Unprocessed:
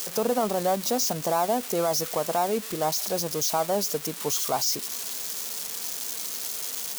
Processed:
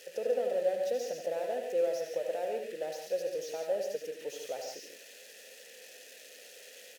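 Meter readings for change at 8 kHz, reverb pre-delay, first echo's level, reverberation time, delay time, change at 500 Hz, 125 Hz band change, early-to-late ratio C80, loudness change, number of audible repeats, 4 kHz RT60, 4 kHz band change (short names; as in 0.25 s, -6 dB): -20.5 dB, none, -8.0 dB, none, 74 ms, -4.0 dB, under -20 dB, none, -8.0 dB, 3, none, -16.5 dB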